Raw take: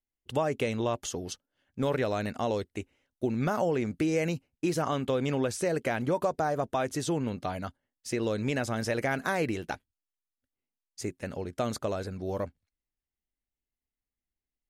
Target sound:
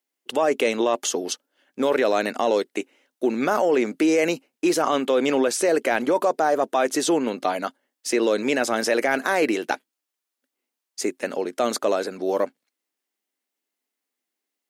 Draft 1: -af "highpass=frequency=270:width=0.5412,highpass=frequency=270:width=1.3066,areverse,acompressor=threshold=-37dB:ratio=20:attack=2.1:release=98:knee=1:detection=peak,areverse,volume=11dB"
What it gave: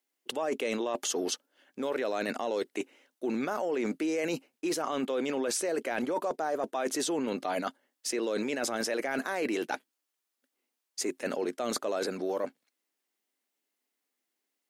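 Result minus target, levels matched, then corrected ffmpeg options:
downward compressor: peak gain reduction +11.5 dB
-af "highpass=frequency=270:width=0.5412,highpass=frequency=270:width=1.3066,areverse,acompressor=threshold=-25dB:ratio=20:attack=2.1:release=98:knee=1:detection=peak,areverse,volume=11dB"

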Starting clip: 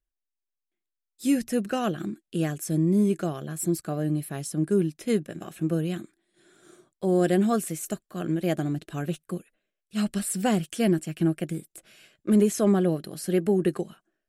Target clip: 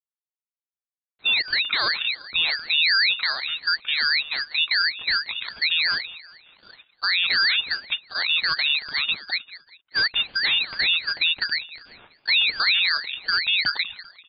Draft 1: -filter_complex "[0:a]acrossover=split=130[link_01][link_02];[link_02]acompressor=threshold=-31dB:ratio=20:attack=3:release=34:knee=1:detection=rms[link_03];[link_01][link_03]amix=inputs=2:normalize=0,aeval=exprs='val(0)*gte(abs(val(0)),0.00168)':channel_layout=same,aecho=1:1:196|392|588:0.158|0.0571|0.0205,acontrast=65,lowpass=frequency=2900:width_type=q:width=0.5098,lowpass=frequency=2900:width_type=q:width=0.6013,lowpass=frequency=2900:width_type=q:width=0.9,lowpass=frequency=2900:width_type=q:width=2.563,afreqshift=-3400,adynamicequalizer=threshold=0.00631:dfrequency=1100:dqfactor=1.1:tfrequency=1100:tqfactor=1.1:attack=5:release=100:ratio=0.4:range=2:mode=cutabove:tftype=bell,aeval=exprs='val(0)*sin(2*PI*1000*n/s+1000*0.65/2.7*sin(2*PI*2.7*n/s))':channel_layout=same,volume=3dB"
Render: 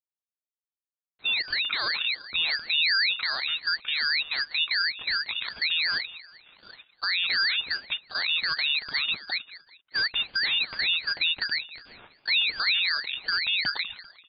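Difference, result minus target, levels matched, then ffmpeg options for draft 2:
downward compressor: peak gain reduction +6 dB
-filter_complex "[0:a]acrossover=split=130[link_01][link_02];[link_02]acompressor=threshold=-24.5dB:ratio=20:attack=3:release=34:knee=1:detection=rms[link_03];[link_01][link_03]amix=inputs=2:normalize=0,aeval=exprs='val(0)*gte(abs(val(0)),0.00168)':channel_layout=same,aecho=1:1:196|392|588:0.158|0.0571|0.0205,acontrast=65,lowpass=frequency=2900:width_type=q:width=0.5098,lowpass=frequency=2900:width_type=q:width=0.6013,lowpass=frequency=2900:width_type=q:width=0.9,lowpass=frequency=2900:width_type=q:width=2.563,afreqshift=-3400,adynamicequalizer=threshold=0.00631:dfrequency=1100:dqfactor=1.1:tfrequency=1100:tqfactor=1.1:attack=5:release=100:ratio=0.4:range=2:mode=cutabove:tftype=bell,aeval=exprs='val(0)*sin(2*PI*1000*n/s+1000*0.65/2.7*sin(2*PI*2.7*n/s))':channel_layout=same,volume=3dB"

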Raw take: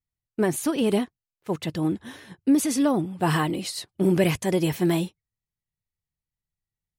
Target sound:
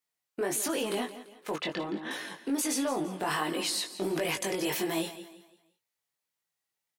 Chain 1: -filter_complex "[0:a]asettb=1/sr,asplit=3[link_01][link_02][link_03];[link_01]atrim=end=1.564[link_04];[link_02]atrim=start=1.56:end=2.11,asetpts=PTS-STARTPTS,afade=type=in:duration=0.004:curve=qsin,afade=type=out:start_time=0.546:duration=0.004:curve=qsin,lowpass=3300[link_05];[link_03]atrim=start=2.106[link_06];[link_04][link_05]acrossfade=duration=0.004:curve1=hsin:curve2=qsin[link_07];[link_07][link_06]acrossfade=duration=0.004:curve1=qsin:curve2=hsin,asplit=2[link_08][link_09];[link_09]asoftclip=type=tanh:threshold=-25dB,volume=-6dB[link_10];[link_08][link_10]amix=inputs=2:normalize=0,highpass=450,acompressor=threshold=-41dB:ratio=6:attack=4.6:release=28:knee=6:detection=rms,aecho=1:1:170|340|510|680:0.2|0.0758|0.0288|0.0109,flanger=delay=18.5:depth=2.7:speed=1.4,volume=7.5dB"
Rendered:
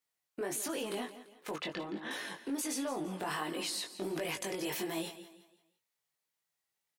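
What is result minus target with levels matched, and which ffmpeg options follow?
downward compressor: peak gain reduction +6 dB
-filter_complex "[0:a]asettb=1/sr,asplit=3[link_01][link_02][link_03];[link_01]atrim=end=1.564[link_04];[link_02]atrim=start=1.56:end=2.11,asetpts=PTS-STARTPTS,afade=type=in:duration=0.004:curve=qsin,afade=type=out:start_time=0.546:duration=0.004:curve=qsin,lowpass=3300[link_05];[link_03]atrim=start=2.106[link_06];[link_04][link_05]acrossfade=duration=0.004:curve1=hsin:curve2=qsin[link_07];[link_07][link_06]acrossfade=duration=0.004:curve1=qsin:curve2=hsin,asplit=2[link_08][link_09];[link_09]asoftclip=type=tanh:threshold=-25dB,volume=-6dB[link_10];[link_08][link_10]amix=inputs=2:normalize=0,highpass=450,acompressor=threshold=-33.5dB:ratio=6:attack=4.6:release=28:knee=6:detection=rms,aecho=1:1:170|340|510|680:0.2|0.0758|0.0288|0.0109,flanger=delay=18.5:depth=2.7:speed=1.4,volume=7.5dB"

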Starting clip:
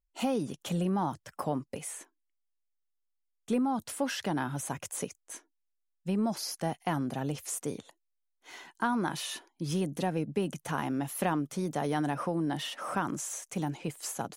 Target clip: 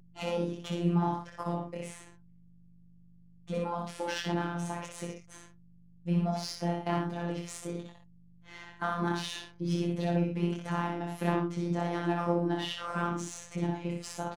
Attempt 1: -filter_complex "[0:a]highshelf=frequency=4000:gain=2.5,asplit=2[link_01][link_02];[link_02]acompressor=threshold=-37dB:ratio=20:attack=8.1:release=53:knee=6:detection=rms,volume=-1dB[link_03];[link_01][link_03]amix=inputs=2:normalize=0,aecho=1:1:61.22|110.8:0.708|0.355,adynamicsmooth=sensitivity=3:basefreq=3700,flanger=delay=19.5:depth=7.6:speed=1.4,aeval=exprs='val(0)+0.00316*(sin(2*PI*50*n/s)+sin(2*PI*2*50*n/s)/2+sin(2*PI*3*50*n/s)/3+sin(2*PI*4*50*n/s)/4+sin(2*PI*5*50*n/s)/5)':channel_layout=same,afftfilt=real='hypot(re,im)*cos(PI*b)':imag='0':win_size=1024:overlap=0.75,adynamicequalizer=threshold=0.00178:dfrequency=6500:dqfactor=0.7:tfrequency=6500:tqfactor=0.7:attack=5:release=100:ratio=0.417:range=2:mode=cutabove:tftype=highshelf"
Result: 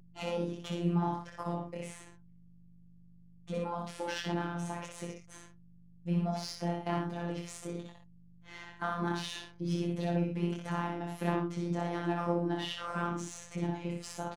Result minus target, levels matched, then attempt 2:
downward compressor: peak gain reduction +9.5 dB
-filter_complex "[0:a]highshelf=frequency=4000:gain=2.5,asplit=2[link_01][link_02];[link_02]acompressor=threshold=-26.5dB:ratio=20:attack=8.1:release=53:knee=6:detection=rms,volume=-1dB[link_03];[link_01][link_03]amix=inputs=2:normalize=0,aecho=1:1:61.22|110.8:0.708|0.355,adynamicsmooth=sensitivity=3:basefreq=3700,flanger=delay=19.5:depth=7.6:speed=1.4,aeval=exprs='val(0)+0.00316*(sin(2*PI*50*n/s)+sin(2*PI*2*50*n/s)/2+sin(2*PI*3*50*n/s)/3+sin(2*PI*4*50*n/s)/4+sin(2*PI*5*50*n/s)/5)':channel_layout=same,afftfilt=real='hypot(re,im)*cos(PI*b)':imag='0':win_size=1024:overlap=0.75,adynamicequalizer=threshold=0.00178:dfrequency=6500:dqfactor=0.7:tfrequency=6500:tqfactor=0.7:attack=5:release=100:ratio=0.417:range=2:mode=cutabove:tftype=highshelf"

